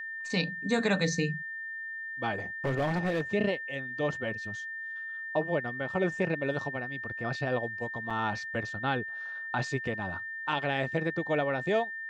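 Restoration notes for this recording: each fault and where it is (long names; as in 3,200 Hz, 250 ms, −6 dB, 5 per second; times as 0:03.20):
whistle 1,800 Hz −36 dBFS
0:02.65–0:03.22: clipping −24.5 dBFS
0:08.10–0:08.11: drop-out 5.8 ms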